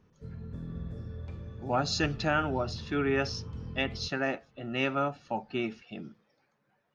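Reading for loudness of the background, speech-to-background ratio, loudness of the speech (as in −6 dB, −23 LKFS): −42.0 LKFS, 10.5 dB, −31.5 LKFS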